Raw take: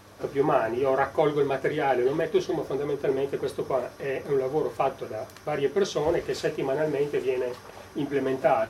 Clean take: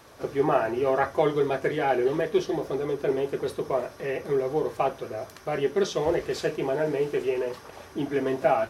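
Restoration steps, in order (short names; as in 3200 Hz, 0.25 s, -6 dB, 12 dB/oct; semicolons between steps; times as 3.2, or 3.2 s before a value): de-hum 100.1 Hz, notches 3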